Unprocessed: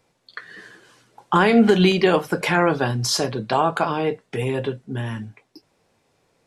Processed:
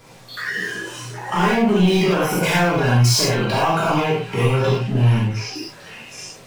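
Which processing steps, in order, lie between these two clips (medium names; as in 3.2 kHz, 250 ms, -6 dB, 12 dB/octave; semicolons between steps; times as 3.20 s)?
power-law waveshaper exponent 0.5; compression 2.5:1, threshold -17 dBFS, peak gain reduction 6.5 dB; repeats whose band climbs or falls 768 ms, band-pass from 1.6 kHz, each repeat 0.7 oct, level -6 dB; gated-style reverb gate 130 ms flat, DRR -6.5 dB; spectral noise reduction 8 dB; trim -7.5 dB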